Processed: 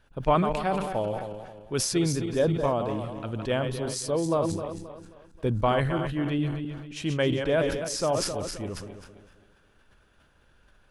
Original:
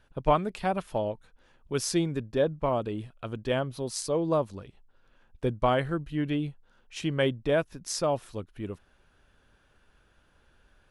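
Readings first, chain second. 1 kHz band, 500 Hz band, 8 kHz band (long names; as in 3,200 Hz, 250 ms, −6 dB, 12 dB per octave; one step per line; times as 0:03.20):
+1.5 dB, +1.5 dB, +4.0 dB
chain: feedback delay that plays each chunk backwards 133 ms, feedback 60%, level −8.5 dB
level that may fall only so fast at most 42 dB per second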